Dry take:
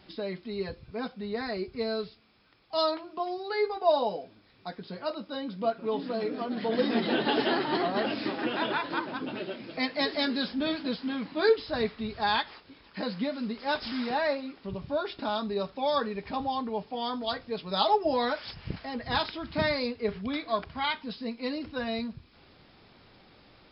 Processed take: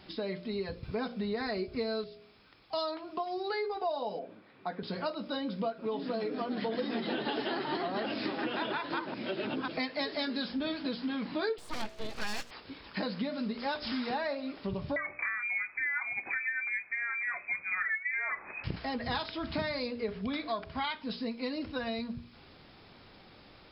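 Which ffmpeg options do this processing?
-filter_complex "[0:a]asettb=1/sr,asplit=3[a][b][c];[a]atrim=end=4.194[d];[b]atrim=start=4.19:end=4.83,asetpts=PTS-STARTPTS,afade=t=in:d=0.004:c=qsin,afade=t=out:st=0.636:d=0.004:c=qsin,highpass=180,lowpass=2.2k[e];[c]atrim=start=4.826[f];[d][e]acrossfade=d=0.004:c1=hsin:c2=qsin[g];[g][f]acrossfade=d=0.004:c1=qsin:c2=hsin,asettb=1/sr,asplit=3[h][i][j];[h]atrim=end=11.584[k];[i]atrim=start=11.58:end=12.51,asetpts=PTS-STARTPTS,afade=t=in:d=0.004:c=qsin,afade=t=out:st=0.926:d=0.004:c=qsin,aeval=exprs='abs(val(0))':c=same[l];[j]atrim=start=12.506[m];[k][l]acrossfade=d=0.004:c1=hsin:c2=qsin[n];[n][m]acrossfade=d=0.004:c1=qsin:c2=hsin,asettb=1/sr,asplit=3[o][p][q];[o]atrim=end=14.964[r];[p]atrim=start=14.96:end=18.64,asetpts=PTS-STARTPTS,afade=t=in:d=0.004:c=qsin,afade=t=out:st=3.676:d=0.004:c=qsin,lowpass=f=2.2k:t=q:w=0.5098,lowpass=f=2.2k:t=q:w=0.6013,lowpass=f=2.2k:t=q:w=0.9,lowpass=f=2.2k:t=q:w=2.563,afreqshift=-2600[s];[q]atrim=start=18.636[t];[r][s]acrossfade=d=0.004:c1=hsin:c2=qsin[u];[u][t]acrossfade=d=0.004:c1=qsin:c2=hsin,asplit=5[v][w][x][y][z];[v]atrim=end=0.832[aa];[w]atrim=start=0.828:end=2.042,asetpts=PTS-STARTPTS,volume=6dB[ab];[x]atrim=start=2.038:end=9.142[ac];[y]atrim=start=9.138:end=9.682,asetpts=PTS-STARTPTS,areverse[ad];[z]atrim=start=9.678[ae];[aa][ab]acrossfade=d=0.004:c1=hsin:c2=hsin[af];[af][ac]acrossfade=d=0.004:c1=hsin:c2=hsin[ag];[ag][ad]acrossfade=d=0.004:c1=hsin:c2=hsin[ah];[ah][ae]acrossfade=d=0.004:c1=hsin:c2=hsin,dynaudnorm=f=230:g=31:m=3.5dB,bandreject=f=59.36:t=h:w=4,bandreject=f=118.72:t=h:w=4,bandreject=f=178.08:t=h:w=4,bandreject=f=237.44:t=h:w=4,bandreject=f=296.8:t=h:w=4,bandreject=f=356.16:t=h:w=4,bandreject=f=415.52:t=h:w=4,bandreject=f=474.88:t=h:w=4,bandreject=f=534.24:t=h:w=4,bandreject=f=593.6:t=h:w=4,bandreject=f=652.96:t=h:w=4,acompressor=threshold=-34dB:ratio=6,volume=2.5dB"

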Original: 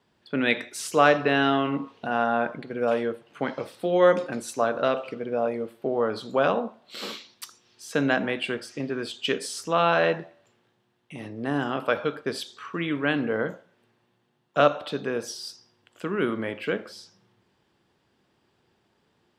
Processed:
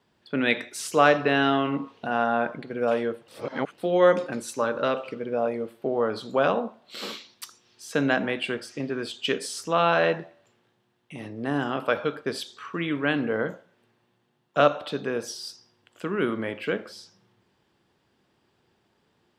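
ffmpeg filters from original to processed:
-filter_complex "[0:a]asettb=1/sr,asplit=3[a][b][c];[a]atrim=end=4.344[d];[b]atrim=start=4.34:end=5.34,asetpts=PTS-STARTPTS,afade=t=in:d=0.004:c=qsin,afade=t=out:st=0.996:d=0.004:c=qsin,asuperstop=centerf=700:order=4:qfactor=7[e];[c]atrim=start=5.336[f];[d][e]acrossfade=d=0.004:c1=hsin:c2=qsin[g];[g][f]acrossfade=d=0.004:c1=qsin:c2=hsin,asplit=3[h][i][j];[h]atrim=end=3.282[k];[i]atrim=start=3.278:end=3.782,asetpts=PTS-STARTPTS,areverse[l];[j]atrim=start=3.778[m];[k][l]acrossfade=d=0.004:c1=hsin:c2=hsin[n];[n][m]acrossfade=d=0.004:c1=hsin:c2=hsin"

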